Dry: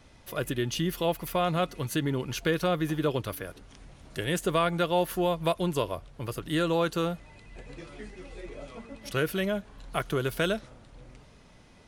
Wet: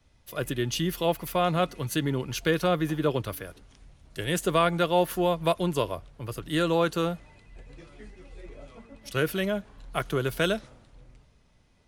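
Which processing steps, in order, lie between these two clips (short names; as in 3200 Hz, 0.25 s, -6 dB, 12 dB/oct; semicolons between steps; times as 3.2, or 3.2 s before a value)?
three-band expander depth 40%; gain +1.5 dB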